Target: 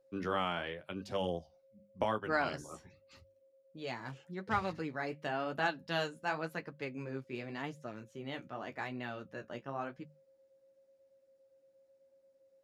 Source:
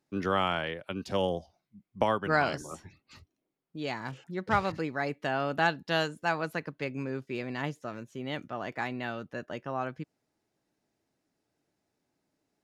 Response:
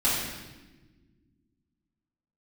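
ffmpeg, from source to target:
-af "bandreject=f=50:t=h:w=6,bandreject=f=100:t=h:w=6,bandreject=f=150:t=h:w=6,bandreject=f=200:t=h:w=6,aeval=exprs='val(0)+0.00126*sin(2*PI*540*n/s)':c=same,flanger=delay=7.9:depth=9:regen=-36:speed=0.89:shape=triangular,volume=-2.5dB"

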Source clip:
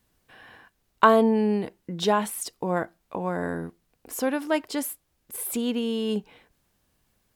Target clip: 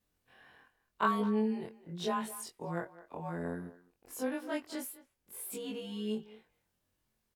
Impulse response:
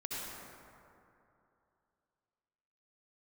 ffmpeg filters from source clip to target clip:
-filter_complex "[0:a]afftfilt=real='re':imag='-im':win_size=2048:overlap=0.75,asplit=2[a][b];[b]adelay=210,highpass=300,lowpass=3.4k,asoftclip=type=hard:threshold=-18.5dB,volume=-16dB[c];[a][c]amix=inputs=2:normalize=0,volume=-6.5dB"

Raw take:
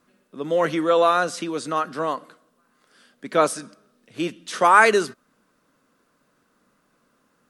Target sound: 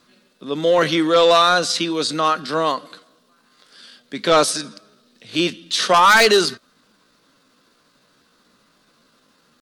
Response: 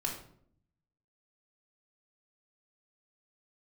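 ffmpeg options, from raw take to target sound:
-af "equalizer=f=4.1k:w=1.3:g=13,atempo=0.78,aeval=exprs='0.944*(cos(1*acos(clip(val(0)/0.944,-1,1)))-cos(1*PI/2))+0.376*(cos(5*acos(clip(val(0)/0.944,-1,1)))-cos(5*PI/2))':c=same,volume=-4.5dB"

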